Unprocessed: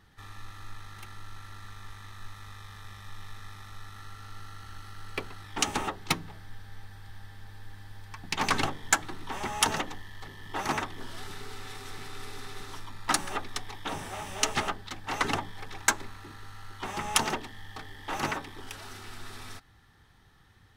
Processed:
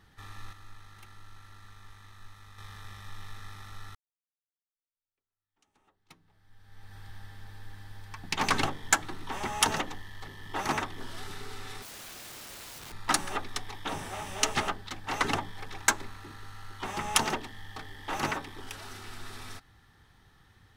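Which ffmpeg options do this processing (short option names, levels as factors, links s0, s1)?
-filter_complex "[0:a]asettb=1/sr,asplit=3[s0][s1][s2];[s0]atrim=end=11.824[s3];[s1]atrim=start=11.82:end=12.92,asetpts=PTS-STARTPTS,afade=t=in:d=0.004:c=qsin,afade=t=out:st=1.096:d=0.004:c=qsin,aeval=exprs='(mod(106*val(0)+1,2)-1)/106':c=same[s4];[s2]atrim=start=12.916[s5];[s3][s4]acrossfade=d=0.004:c1=hsin:c2=qsin[s6];[s6][s5]acrossfade=d=0.004:c1=qsin:c2=hsin,asplit=4[s7][s8][s9][s10];[s7]atrim=end=0.532[s11];[s8]atrim=start=0.528:end=2.582,asetpts=PTS-STARTPTS,volume=0.473[s12];[s9]atrim=start=2.578:end=3.95,asetpts=PTS-STARTPTS,afade=t=out:st=1.368:d=0.004:c=hsin[s13];[s10]atrim=start=3.95,asetpts=PTS-STARTPTS,afade=t=in:d=3.02:c=exp[s14];[s11][s12]acrossfade=d=0.004:c1=hsin:c2=hsin[s15];[s13][s14]concat=n=2:v=0:a=1[s16];[s15][s16]acrossfade=d=0.004:c1=hsin:c2=hsin"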